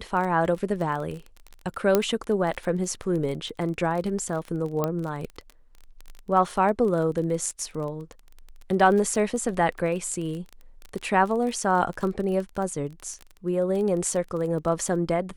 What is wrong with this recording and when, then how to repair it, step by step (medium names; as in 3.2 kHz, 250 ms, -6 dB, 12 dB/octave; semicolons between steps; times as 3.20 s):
crackle 24 per s -30 dBFS
1.95 s: pop -6 dBFS
4.84 s: pop -12 dBFS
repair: de-click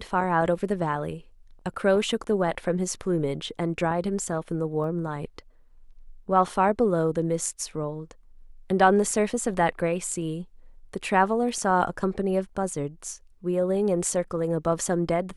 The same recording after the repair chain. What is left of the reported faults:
4.84 s: pop